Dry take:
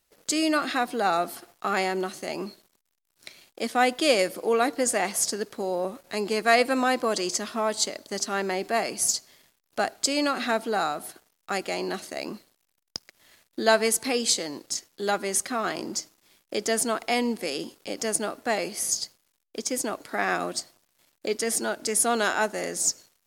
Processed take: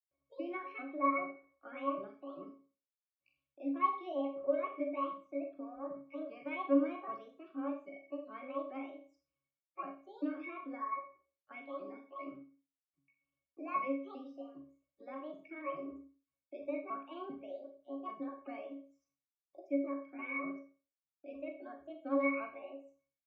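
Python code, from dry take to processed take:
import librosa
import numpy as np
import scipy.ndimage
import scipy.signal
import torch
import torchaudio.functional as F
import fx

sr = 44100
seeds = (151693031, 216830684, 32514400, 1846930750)

y = fx.pitch_ramps(x, sr, semitones=9.0, every_ms=393)
y = scipy.signal.sosfilt(scipy.signal.butter(16, 150.0, 'highpass', fs=sr, output='sos'), y)
y = fx.high_shelf(y, sr, hz=2600.0, db=5.5)
y = fx.leveller(y, sr, passes=2)
y = fx.spec_topn(y, sr, count=64)
y = fx.quant_dither(y, sr, seeds[0], bits=10, dither='none')
y = scipy.signal.sosfilt(scipy.signal.butter(4, 3400.0, 'lowpass', fs=sr, output='sos'), y)
y = fx.octave_resonator(y, sr, note='C#', decay_s=0.27)
y = fx.rev_schroeder(y, sr, rt60_s=0.37, comb_ms=29, drr_db=4.0)
y = F.gain(torch.from_numpy(y), -4.5).numpy()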